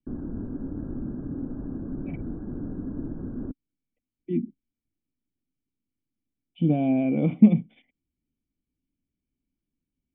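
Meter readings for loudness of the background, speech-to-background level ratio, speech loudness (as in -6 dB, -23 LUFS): -35.0 LUFS, 12.0 dB, -23.0 LUFS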